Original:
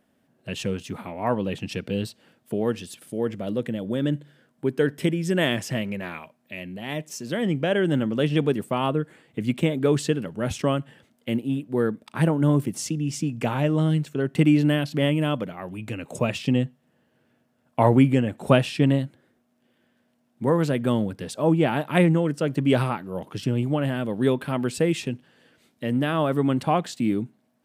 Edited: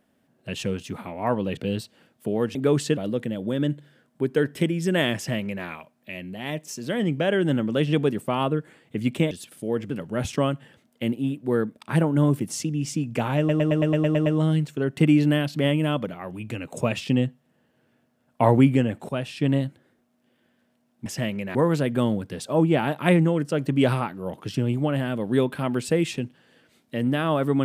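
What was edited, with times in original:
0:01.57–0:01.83: remove
0:02.81–0:03.40: swap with 0:09.74–0:10.16
0:05.59–0:06.08: duplicate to 0:20.44
0:13.64: stutter 0.11 s, 9 plays
0:18.47–0:19.03: fade in, from −15 dB

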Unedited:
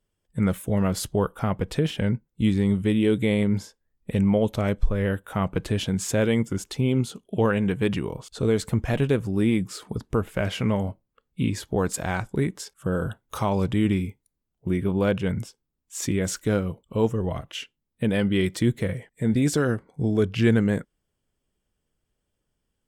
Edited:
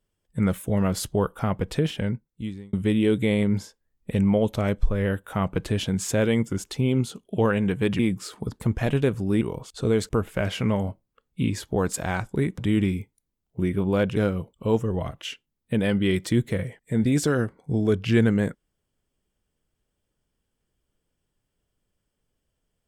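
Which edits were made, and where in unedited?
0:01.83–0:02.73: fade out
0:07.99–0:08.67: swap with 0:09.48–0:10.09
0:12.58–0:13.66: remove
0:15.24–0:16.46: remove

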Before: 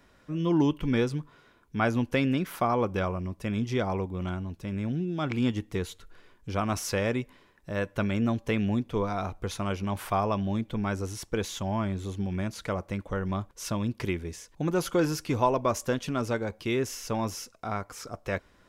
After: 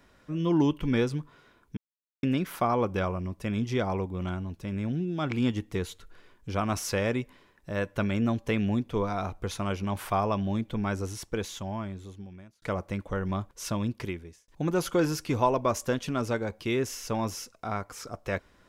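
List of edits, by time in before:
0:01.77–0:02.23: silence
0:11.07–0:12.62: fade out
0:13.85–0:14.48: fade out

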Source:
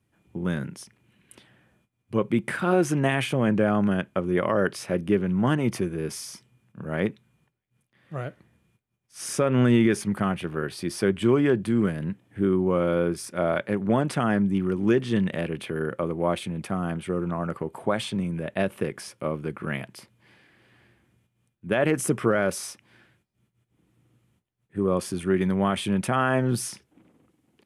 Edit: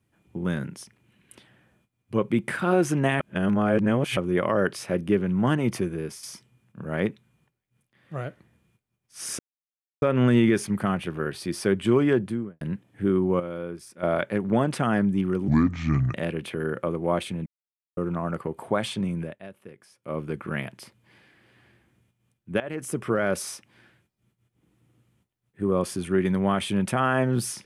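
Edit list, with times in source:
0:03.20–0:04.17: reverse
0:05.94–0:06.23: fade out, to −9.5 dB
0:09.39: splice in silence 0.63 s
0:11.51–0:11.98: fade out and dull
0:12.77–0:13.40: clip gain −10 dB
0:14.85–0:15.30: play speed 68%
0:16.62–0:17.13: silence
0:18.37–0:19.34: duck −17 dB, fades 0.16 s
0:21.76–0:22.52: fade in, from −16.5 dB

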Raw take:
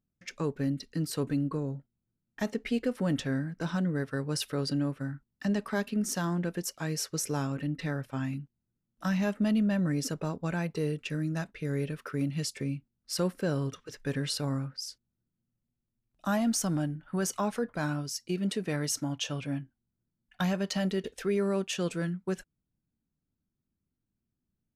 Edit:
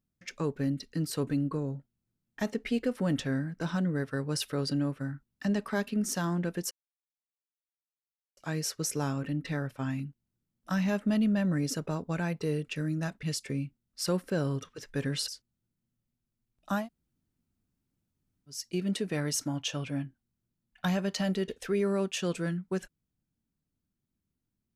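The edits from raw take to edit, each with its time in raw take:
0:06.71: splice in silence 1.66 s
0:11.57–0:12.34: remove
0:14.39–0:14.84: remove
0:16.37–0:18.10: fill with room tone, crossfade 0.16 s

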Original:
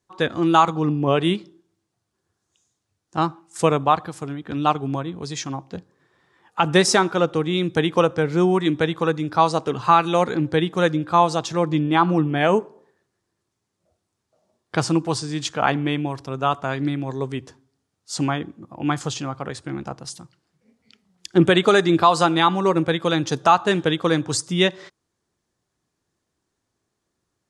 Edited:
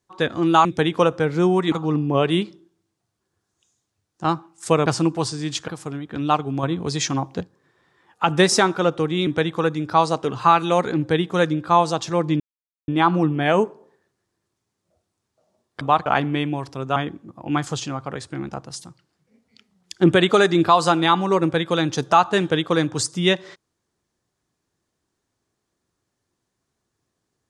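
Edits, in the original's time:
0:03.79–0:04.04: swap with 0:14.76–0:15.58
0:04.99–0:05.77: clip gain +6 dB
0:07.63–0:08.70: move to 0:00.65
0:11.83: splice in silence 0.48 s
0:16.48–0:18.30: remove

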